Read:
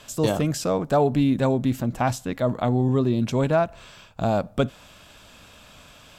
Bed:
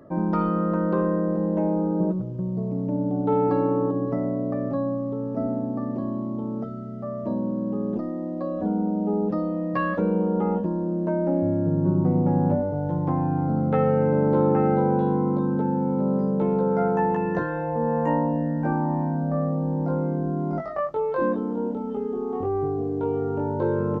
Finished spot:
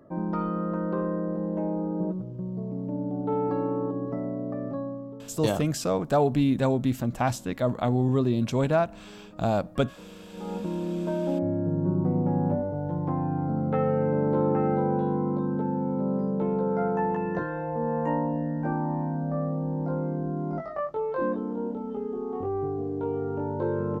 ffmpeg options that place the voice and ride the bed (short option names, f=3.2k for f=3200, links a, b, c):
-filter_complex "[0:a]adelay=5200,volume=-2.5dB[a];[1:a]volume=14dB,afade=t=out:st=4.69:d=0.74:silence=0.125893,afade=t=in:st=10.31:d=0.43:silence=0.105925[b];[a][b]amix=inputs=2:normalize=0"